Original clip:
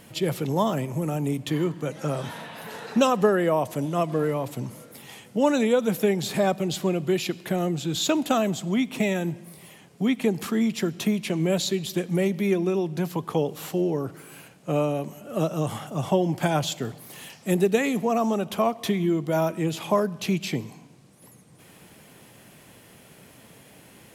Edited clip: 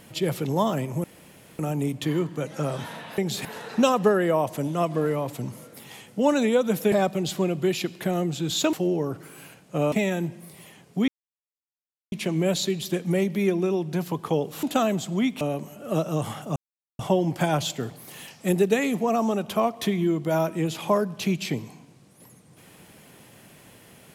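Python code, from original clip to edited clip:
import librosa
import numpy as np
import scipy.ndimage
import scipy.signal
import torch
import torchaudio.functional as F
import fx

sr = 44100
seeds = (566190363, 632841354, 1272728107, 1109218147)

y = fx.edit(x, sr, fx.insert_room_tone(at_s=1.04, length_s=0.55),
    fx.move(start_s=6.1, length_s=0.27, to_s=2.63),
    fx.swap(start_s=8.18, length_s=0.78, other_s=13.67, other_length_s=1.19),
    fx.silence(start_s=10.12, length_s=1.04),
    fx.insert_silence(at_s=16.01, length_s=0.43), tone=tone)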